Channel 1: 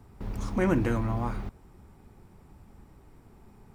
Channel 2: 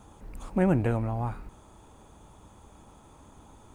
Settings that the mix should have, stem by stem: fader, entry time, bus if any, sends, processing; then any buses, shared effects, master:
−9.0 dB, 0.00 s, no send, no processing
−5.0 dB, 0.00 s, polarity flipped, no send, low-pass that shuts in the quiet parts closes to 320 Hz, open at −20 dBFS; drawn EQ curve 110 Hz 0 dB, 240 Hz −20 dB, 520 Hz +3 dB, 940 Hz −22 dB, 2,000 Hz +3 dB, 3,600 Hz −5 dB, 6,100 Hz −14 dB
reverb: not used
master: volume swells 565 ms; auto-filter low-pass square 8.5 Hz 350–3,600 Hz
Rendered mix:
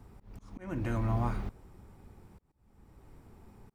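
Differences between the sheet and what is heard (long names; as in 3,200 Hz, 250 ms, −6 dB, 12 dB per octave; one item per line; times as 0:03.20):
stem 1 −9.0 dB → −1.5 dB
master: missing auto-filter low-pass square 8.5 Hz 350–3,600 Hz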